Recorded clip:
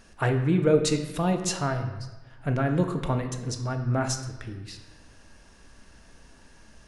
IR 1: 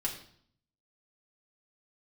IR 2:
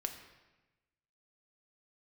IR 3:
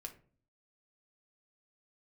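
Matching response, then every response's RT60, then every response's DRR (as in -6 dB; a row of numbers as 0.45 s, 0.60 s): 2; 0.60 s, 1.1 s, 0.45 s; -2.5 dB, 4.5 dB, 3.0 dB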